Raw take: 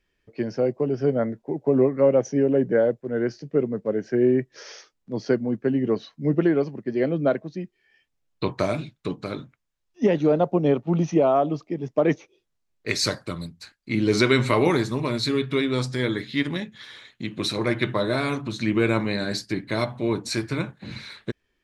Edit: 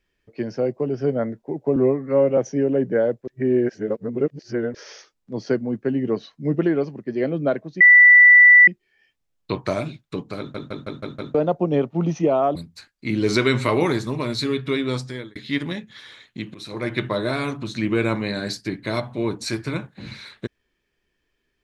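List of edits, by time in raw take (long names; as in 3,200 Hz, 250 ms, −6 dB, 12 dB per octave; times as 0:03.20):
0:01.76–0:02.17: time-stretch 1.5×
0:03.07–0:04.54: reverse
0:07.60: insert tone 1,970 Hz −6.5 dBFS 0.87 s
0:09.31: stutter in place 0.16 s, 6 plays
0:11.48–0:13.40: remove
0:15.76–0:16.20: fade out
0:17.39–0:17.84: fade in, from −18.5 dB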